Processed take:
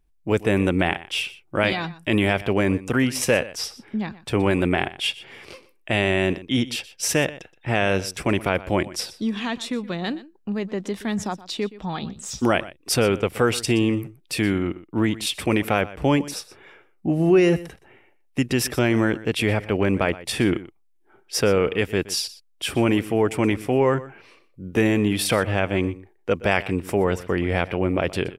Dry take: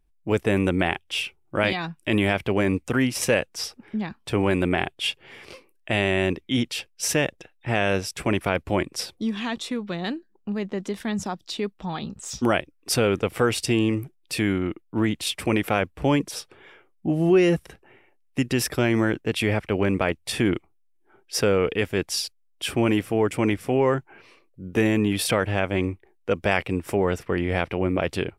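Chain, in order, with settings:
0:16.16–0:17.50: notch filter 3,200 Hz, Q 11
single-tap delay 122 ms −17.5 dB
level +1.5 dB

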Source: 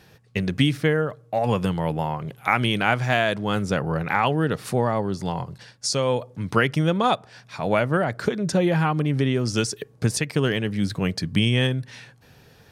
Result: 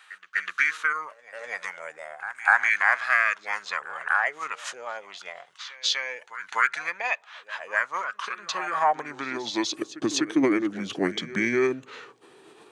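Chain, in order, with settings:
high-pass filter sweep 2,100 Hz → 470 Hz, 0:08.20–0:09.96
formants moved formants −6 semitones
echo ahead of the sound 249 ms −16 dB

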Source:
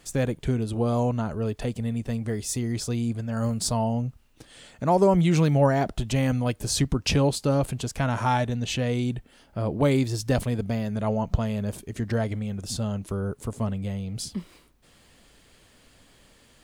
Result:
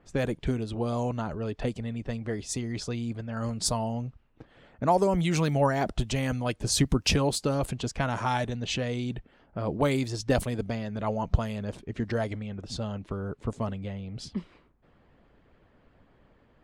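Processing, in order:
harmonic and percussive parts rebalanced harmonic −7 dB
low-pass that shuts in the quiet parts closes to 1,300 Hz, open at −24 dBFS
level +1 dB

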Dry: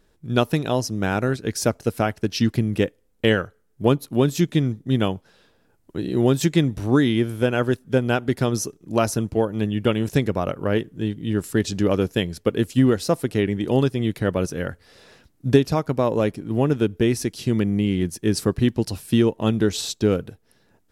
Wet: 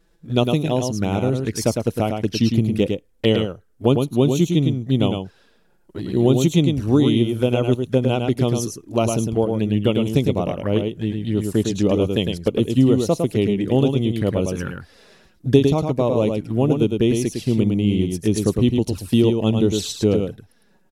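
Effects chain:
flanger swept by the level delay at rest 6.1 ms, full sweep at −18.5 dBFS
on a send: single-tap delay 106 ms −5 dB
on the sum: level +2 dB

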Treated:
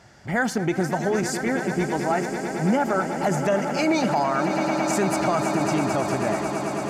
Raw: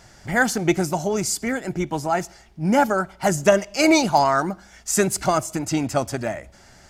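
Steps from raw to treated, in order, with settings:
high-pass filter 79 Hz
high-shelf EQ 4,700 Hz −10.5 dB
echo that builds up and dies away 110 ms, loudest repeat 8, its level −15 dB
brickwall limiter −13 dBFS, peak gain reduction 9 dB

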